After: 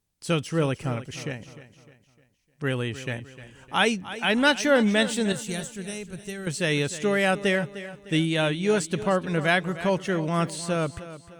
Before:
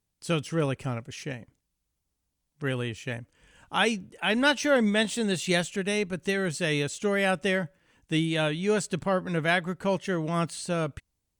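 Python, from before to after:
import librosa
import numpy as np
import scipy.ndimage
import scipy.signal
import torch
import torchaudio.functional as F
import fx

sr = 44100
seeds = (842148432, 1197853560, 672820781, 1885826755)

p1 = fx.graphic_eq(x, sr, hz=(250, 500, 1000, 2000, 4000), db=(-11, -10, -8, -10, -9), at=(5.32, 6.47))
p2 = p1 + fx.echo_feedback(p1, sr, ms=304, feedback_pct=42, wet_db=-14.5, dry=0)
y = F.gain(torch.from_numpy(p2), 2.5).numpy()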